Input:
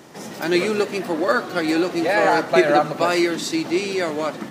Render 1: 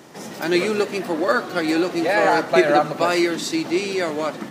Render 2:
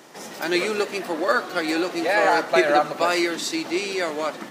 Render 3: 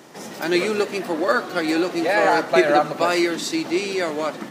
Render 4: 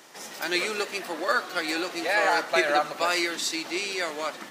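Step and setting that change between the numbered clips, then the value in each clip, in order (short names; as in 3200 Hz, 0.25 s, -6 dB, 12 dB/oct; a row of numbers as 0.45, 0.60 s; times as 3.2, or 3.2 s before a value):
HPF, cutoff: 61, 460, 180, 1400 Hz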